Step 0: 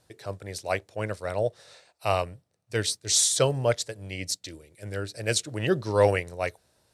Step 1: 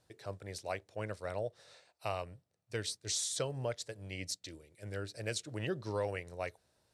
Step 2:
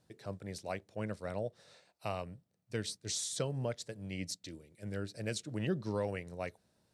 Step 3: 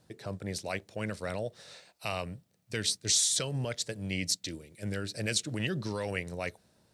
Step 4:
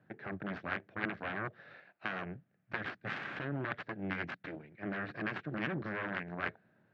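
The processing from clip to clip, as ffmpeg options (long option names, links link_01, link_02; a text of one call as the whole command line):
ffmpeg -i in.wav -af "highshelf=frequency=12000:gain=-8,acompressor=threshold=-27dB:ratio=3,volume=-7dB" out.wav
ffmpeg -i in.wav -af "equalizer=frequency=200:width_type=o:width=1.1:gain=11,volume=-2dB" out.wav
ffmpeg -i in.wav -filter_complex "[0:a]acrossover=split=1700[link_01][link_02];[link_01]alimiter=level_in=9.5dB:limit=-24dB:level=0:latency=1,volume=-9.5dB[link_03];[link_02]dynaudnorm=framelen=110:gausssize=11:maxgain=4.5dB[link_04];[link_03][link_04]amix=inputs=2:normalize=0,volume=7dB" out.wav
ffmpeg -i in.wav -af "alimiter=limit=-20.5dB:level=0:latency=1:release=238,aeval=exprs='0.0944*(cos(1*acos(clip(val(0)/0.0944,-1,1)))-cos(1*PI/2))+0.0473*(cos(3*acos(clip(val(0)/0.0944,-1,1)))-cos(3*PI/2))+0.00944*(cos(8*acos(clip(val(0)/0.0944,-1,1)))-cos(8*PI/2))':channel_layout=same,highpass=frequency=110:width=0.5412,highpass=frequency=110:width=1.3066,equalizer=frequency=490:width_type=q:width=4:gain=-5,equalizer=frequency=950:width_type=q:width=4:gain=-5,equalizer=frequency=1600:width_type=q:width=4:gain=8,lowpass=frequency=2300:width=0.5412,lowpass=frequency=2300:width=1.3066,volume=5dB" out.wav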